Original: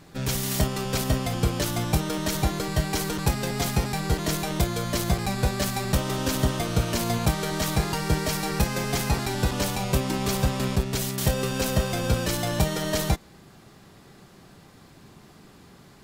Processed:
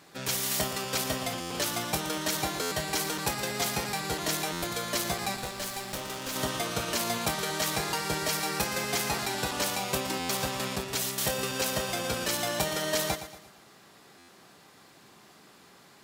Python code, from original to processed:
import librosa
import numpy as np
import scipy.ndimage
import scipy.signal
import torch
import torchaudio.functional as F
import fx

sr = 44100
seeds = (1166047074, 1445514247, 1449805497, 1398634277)

y = fx.highpass(x, sr, hz=600.0, slope=6)
y = fx.tube_stage(y, sr, drive_db=30.0, bias=0.7, at=(5.36, 6.36))
y = fx.echo_feedback(y, sr, ms=116, feedback_pct=44, wet_db=-12)
y = fx.buffer_glitch(y, sr, at_s=(1.4, 2.61, 4.52, 10.19, 14.18), block=512, repeats=8)